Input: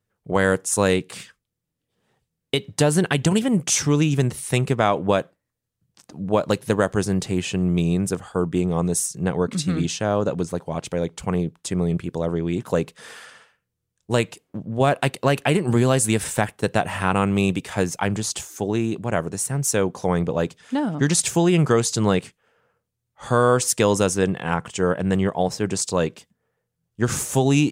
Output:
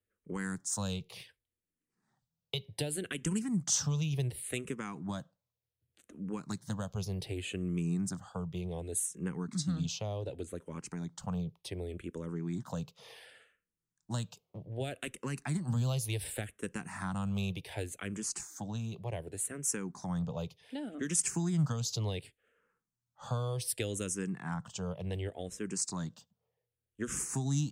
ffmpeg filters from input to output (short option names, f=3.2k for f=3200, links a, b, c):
-filter_complex "[0:a]acrossover=split=200|3000[a][b][c];[b]acompressor=threshold=-28dB:ratio=6[d];[a][d][c]amix=inputs=3:normalize=0,asplit=2[e][f];[f]afreqshift=-0.67[g];[e][g]amix=inputs=2:normalize=1,volume=-8dB"